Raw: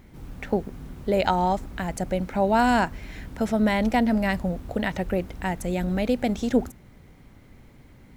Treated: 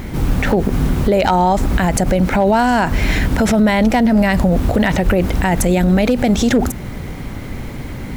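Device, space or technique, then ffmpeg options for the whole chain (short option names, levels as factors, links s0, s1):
loud club master: -af "acompressor=threshold=0.0447:ratio=2,asoftclip=type=hard:threshold=0.112,alimiter=level_in=28.2:limit=0.891:release=50:level=0:latency=1,volume=0.531"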